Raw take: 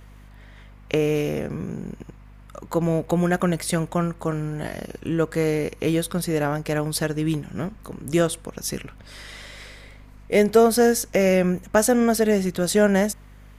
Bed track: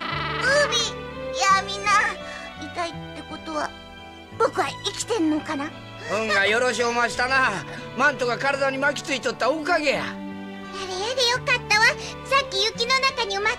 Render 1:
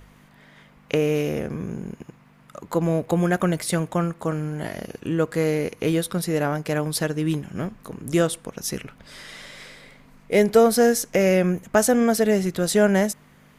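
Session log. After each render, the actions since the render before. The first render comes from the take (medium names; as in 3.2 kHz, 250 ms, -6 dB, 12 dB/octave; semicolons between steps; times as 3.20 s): de-hum 50 Hz, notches 2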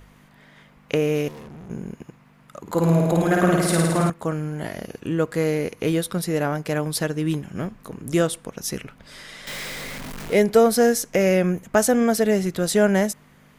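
1.28–1.70 s: valve stage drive 38 dB, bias 0.75; 2.60–4.10 s: flutter echo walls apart 9.3 m, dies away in 1.5 s; 9.47–10.34 s: jump at every zero crossing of -29 dBFS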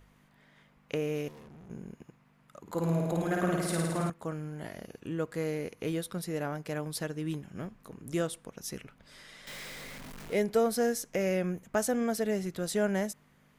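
trim -11 dB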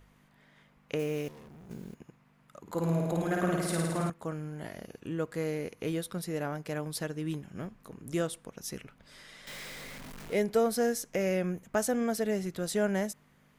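0.99–2.01 s: block-companded coder 5-bit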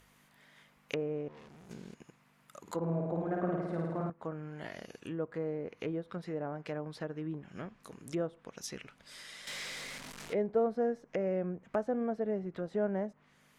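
low-pass that closes with the level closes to 820 Hz, closed at -30 dBFS; tilt EQ +2 dB/octave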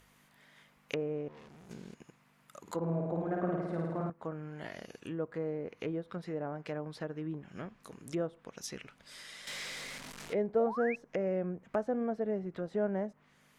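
10.59–10.96 s: painted sound rise 530–2700 Hz -40 dBFS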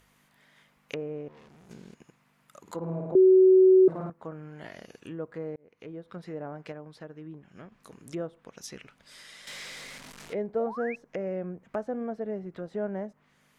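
3.15–3.88 s: bleep 375 Hz -13.5 dBFS; 5.56–6.22 s: fade in; 6.72–7.72 s: gain -4.5 dB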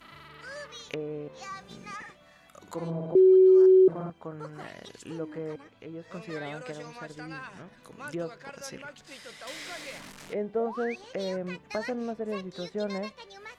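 add bed track -22.5 dB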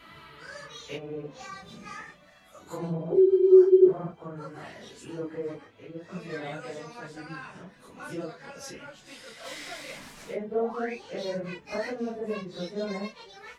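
phase randomisation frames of 100 ms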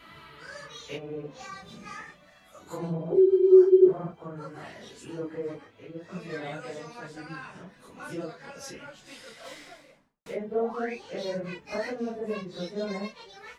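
9.17–10.26 s: studio fade out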